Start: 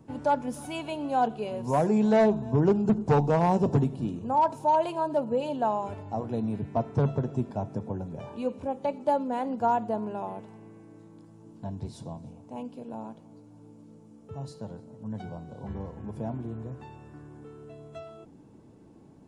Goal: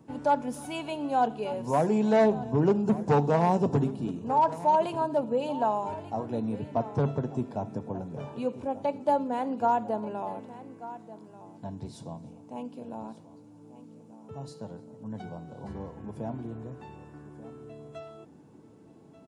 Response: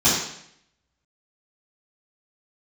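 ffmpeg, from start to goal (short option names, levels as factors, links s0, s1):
-filter_complex "[0:a]highpass=f=130:p=1,aecho=1:1:1187:0.158,asplit=2[s0][s1];[1:a]atrim=start_sample=2205,asetrate=52920,aresample=44100[s2];[s1][s2]afir=irnorm=-1:irlink=0,volume=0.0126[s3];[s0][s3]amix=inputs=2:normalize=0"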